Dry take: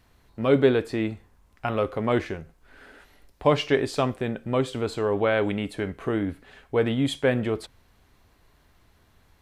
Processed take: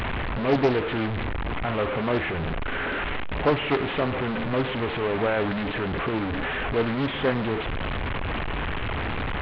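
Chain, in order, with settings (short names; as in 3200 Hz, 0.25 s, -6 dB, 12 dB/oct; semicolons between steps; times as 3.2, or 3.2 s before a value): delta modulation 16 kbps, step -19.5 dBFS; pre-echo 0.109 s -22.5 dB; Doppler distortion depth 0.54 ms; gain -2 dB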